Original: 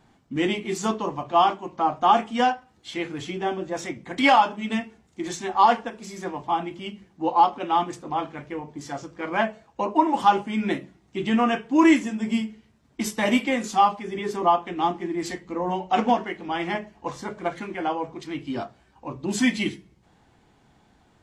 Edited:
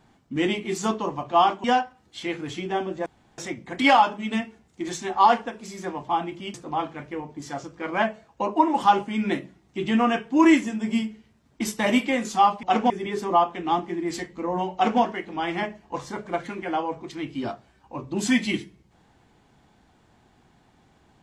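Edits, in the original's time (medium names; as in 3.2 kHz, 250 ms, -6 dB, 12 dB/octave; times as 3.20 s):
1.64–2.35 s: delete
3.77 s: insert room tone 0.32 s
6.93–7.93 s: delete
15.86–16.13 s: copy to 14.02 s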